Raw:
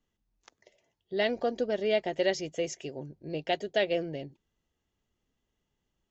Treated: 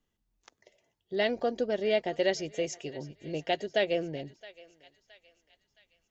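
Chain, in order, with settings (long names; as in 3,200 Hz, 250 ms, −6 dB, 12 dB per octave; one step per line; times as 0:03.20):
feedback echo with a high-pass in the loop 668 ms, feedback 50%, high-pass 950 Hz, level −17.5 dB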